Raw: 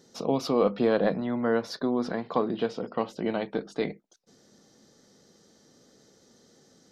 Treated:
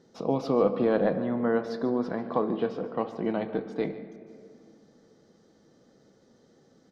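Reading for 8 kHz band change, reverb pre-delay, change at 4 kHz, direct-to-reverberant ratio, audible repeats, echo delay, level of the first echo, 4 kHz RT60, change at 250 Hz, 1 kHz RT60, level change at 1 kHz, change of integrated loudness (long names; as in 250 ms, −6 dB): can't be measured, 6 ms, −8.0 dB, 9.0 dB, 1, 146 ms, −17.0 dB, 1.3 s, 0.0 dB, 2.0 s, −0.5 dB, 0.0 dB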